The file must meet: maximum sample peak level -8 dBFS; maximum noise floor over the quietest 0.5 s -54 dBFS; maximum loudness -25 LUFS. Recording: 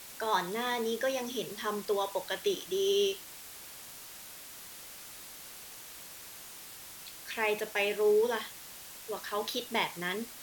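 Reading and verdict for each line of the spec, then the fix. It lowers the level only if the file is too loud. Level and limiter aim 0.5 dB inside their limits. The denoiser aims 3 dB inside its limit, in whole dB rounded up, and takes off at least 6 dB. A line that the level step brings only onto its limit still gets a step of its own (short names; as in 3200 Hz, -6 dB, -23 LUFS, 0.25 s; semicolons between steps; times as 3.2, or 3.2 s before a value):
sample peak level -15.0 dBFS: OK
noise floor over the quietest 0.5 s -48 dBFS: fail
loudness -32.0 LUFS: OK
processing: denoiser 9 dB, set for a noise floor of -48 dBFS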